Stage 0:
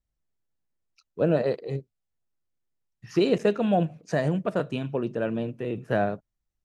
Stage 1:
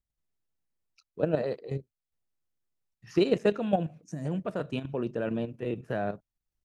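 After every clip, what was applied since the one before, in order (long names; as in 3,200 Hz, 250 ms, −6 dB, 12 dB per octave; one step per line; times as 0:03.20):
output level in coarse steps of 10 dB
gain on a spectral selection 0:04.04–0:04.25, 350–5,300 Hz −16 dB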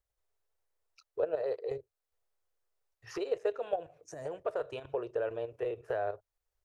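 downward compressor 4 to 1, threshold −37 dBFS, peak gain reduction 15 dB
drawn EQ curve 100 Hz 0 dB, 210 Hz −26 dB, 430 Hz +9 dB, 1,500 Hz +5 dB, 2,500 Hz +1 dB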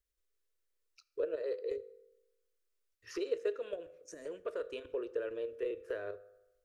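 phaser with its sweep stopped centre 320 Hz, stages 4
on a send at −15 dB: convolution reverb RT60 1.0 s, pre-delay 3 ms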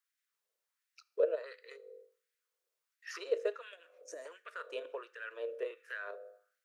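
auto-filter high-pass sine 1.4 Hz 550–1,800 Hz
level +1 dB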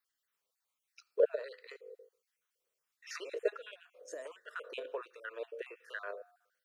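time-frequency cells dropped at random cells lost 30%
level +2.5 dB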